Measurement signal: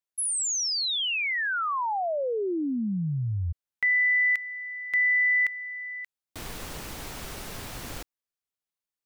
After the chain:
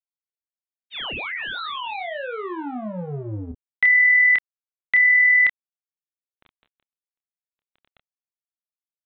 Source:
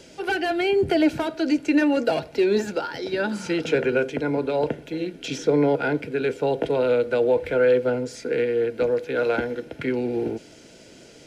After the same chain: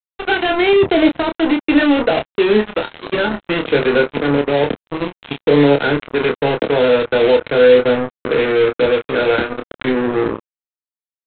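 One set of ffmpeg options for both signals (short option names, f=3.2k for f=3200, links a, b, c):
-filter_complex "[0:a]aresample=8000,acrusher=bits=3:mix=0:aa=0.5,aresample=44100,asplit=2[a][b];[b]adelay=28,volume=-6dB[c];[a][c]amix=inputs=2:normalize=0,volume=6dB"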